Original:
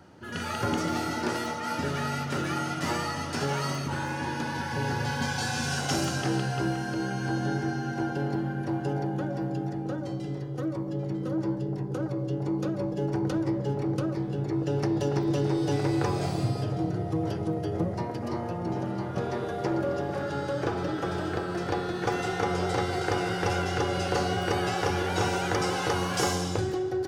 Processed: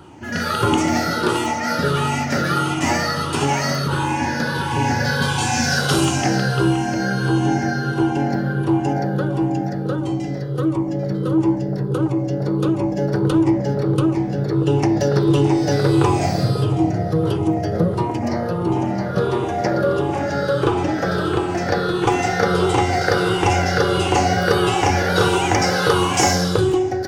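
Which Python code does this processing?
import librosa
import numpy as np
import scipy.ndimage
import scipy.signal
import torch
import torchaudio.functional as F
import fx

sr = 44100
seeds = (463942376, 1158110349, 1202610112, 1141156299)

y = fx.spec_ripple(x, sr, per_octave=0.65, drift_hz=-1.5, depth_db=10)
y = y * 10.0 ** (9.0 / 20.0)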